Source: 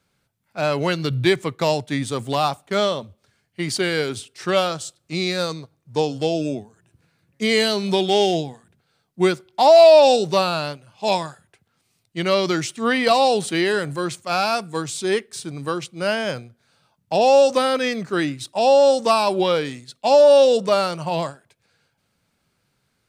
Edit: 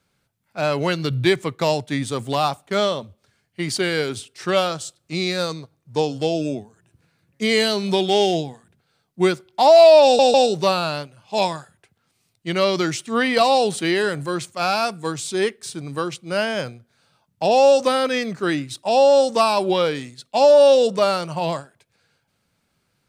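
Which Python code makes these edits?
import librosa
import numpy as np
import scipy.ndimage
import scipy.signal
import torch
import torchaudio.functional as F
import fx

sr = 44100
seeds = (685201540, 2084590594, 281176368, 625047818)

y = fx.edit(x, sr, fx.stutter(start_s=10.04, slice_s=0.15, count=3), tone=tone)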